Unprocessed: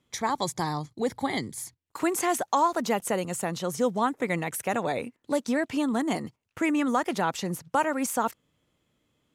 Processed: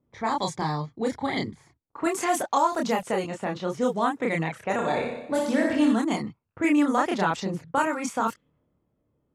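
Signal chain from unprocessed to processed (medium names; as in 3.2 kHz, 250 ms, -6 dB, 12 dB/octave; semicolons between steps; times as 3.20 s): level-controlled noise filter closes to 790 Hz, open at -21 dBFS; 4.74–5.93 s: flutter echo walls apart 10.4 m, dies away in 0.84 s; chorus voices 2, 0.35 Hz, delay 29 ms, depth 2.5 ms; trim +4.5 dB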